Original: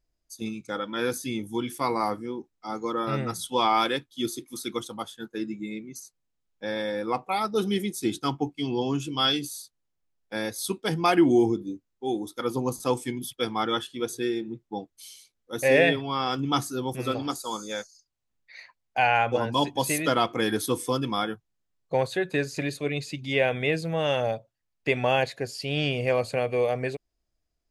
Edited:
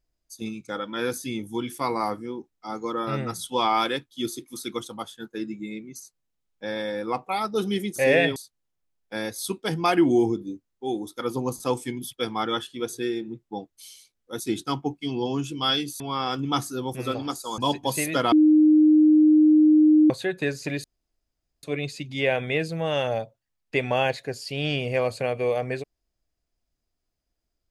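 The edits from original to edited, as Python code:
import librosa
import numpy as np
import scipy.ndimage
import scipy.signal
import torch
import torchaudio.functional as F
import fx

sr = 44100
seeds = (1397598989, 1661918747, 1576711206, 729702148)

y = fx.edit(x, sr, fx.swap(start_s=7.96, length_s=1.6, other_s=15.6, other_length_s=0.4),
    fx.cut(start_s=17.58, length_s=1.92),
    fx.bleep(start_s=20.24, length_s=1.78, hz=307.0, db=-12.5),
    fx.insert_room_tone(at_s=22.76, length_s=0.79), tone=tone)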